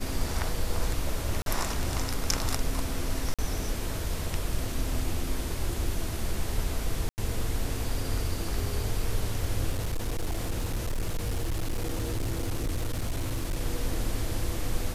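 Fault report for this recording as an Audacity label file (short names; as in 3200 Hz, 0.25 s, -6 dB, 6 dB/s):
1.420000	1.460000	gap 42 ms
3.340000	3.390000	gap 46 ms
7.090000	7.180000	gap 89 ms
9.700000	13.610000	clipped -25 dBFS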